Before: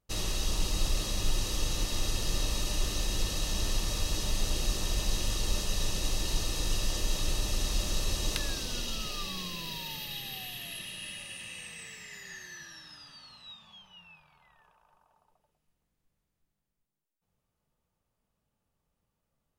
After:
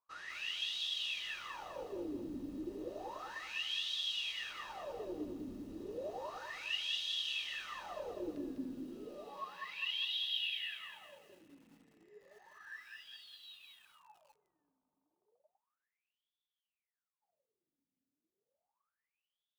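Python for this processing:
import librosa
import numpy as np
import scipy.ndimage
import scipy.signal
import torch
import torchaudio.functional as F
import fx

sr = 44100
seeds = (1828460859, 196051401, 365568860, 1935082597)

y = fx.wah_lfo(x, sr, hz=0.32, low_hz=260.0, high_hz=3500.0, q=22.0)
y = fx.echo_crushed(y, sr, ms=201, feedback_pct=35, bits=13, wet_db=-3.5)
y = y * librosa.db_to_amplitude(12.5)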